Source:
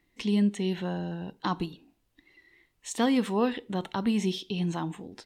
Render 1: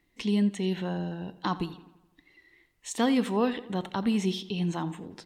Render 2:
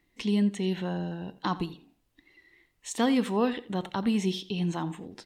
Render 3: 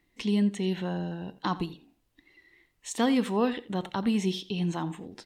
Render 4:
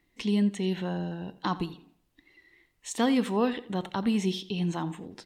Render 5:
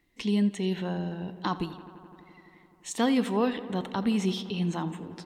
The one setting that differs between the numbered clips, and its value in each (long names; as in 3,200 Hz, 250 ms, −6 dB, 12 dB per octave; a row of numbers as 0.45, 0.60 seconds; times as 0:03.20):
feedback echo with a low-pass in the loop, feedback: 57, 26, 16, 38, 86%